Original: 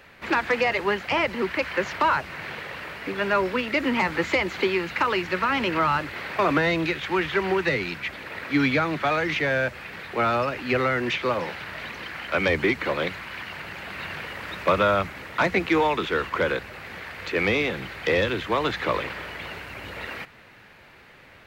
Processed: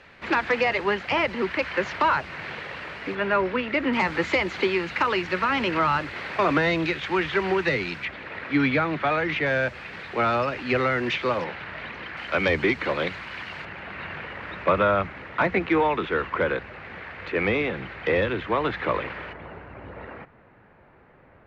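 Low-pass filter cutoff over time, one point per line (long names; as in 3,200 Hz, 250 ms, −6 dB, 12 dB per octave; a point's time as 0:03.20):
5,600 Hz
from 0:03.15 3,000 Hz
from 0:03.93 6,600 Hz
from 0:08.05 3,300 Hz
from 0:09.46 5,800 Hz
from 0:11.44 3,000 Hz
from 0:12.17 5,600 Hz
from 0:13.65 2,500 Hz
from 0:19.33 1,100 Hz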